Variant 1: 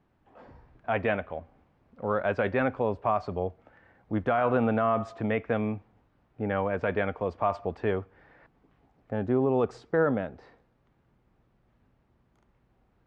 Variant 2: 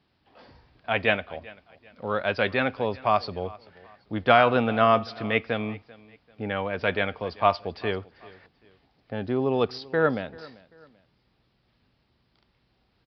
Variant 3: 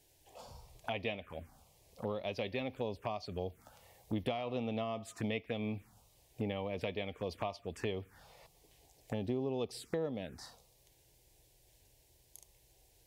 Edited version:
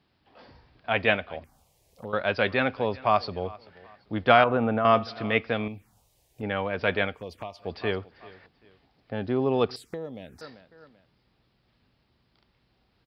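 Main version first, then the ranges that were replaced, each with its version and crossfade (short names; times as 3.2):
2
1.44–2.13 from 3
4.44–4.85 from 1
5.68–6.43 from 3
7.13–7.63 from 3, crossfade 0.16 s
9.76–10.41 from 3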